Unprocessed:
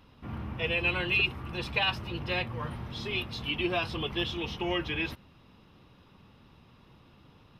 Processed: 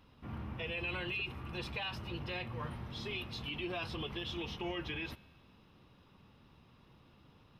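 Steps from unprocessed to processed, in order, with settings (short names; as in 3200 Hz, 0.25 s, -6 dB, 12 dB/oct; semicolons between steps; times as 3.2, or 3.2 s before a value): limiter -25 dBFS, peak gain reduction 9.5 dB; resonator 72 Hz, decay 1.8 s, harmonics all, mix 40%; gain -1 dB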